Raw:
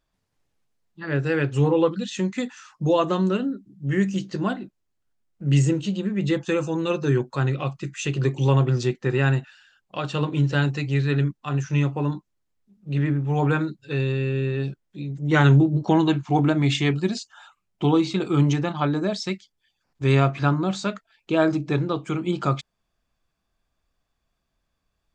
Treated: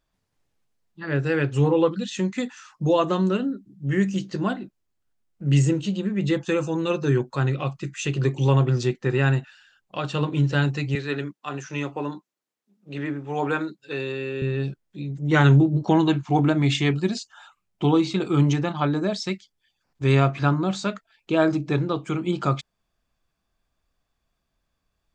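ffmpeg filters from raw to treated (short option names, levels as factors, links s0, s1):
-filter_complex "[0:a]asettb=1/sr,asplit=3[s0][s1][s2];[s0]atrim=end=10.954[s3];[s1]atrim=start=10.95:end=14.42,asetpts=PTS-STARTPTS,afade=t=in:d=0.004:c=qsin,afade=t=out:st=3.466:d=0.004:c=qsin,highpass=290[s4];[s2]atrim=start=14.416[s5];[s3][s4]acrossfade=d=0.004:c1=hsin:c2=qsin[s6];[s6][s5]acrossfade=d=0.004:c1=qsin:c2=hsin"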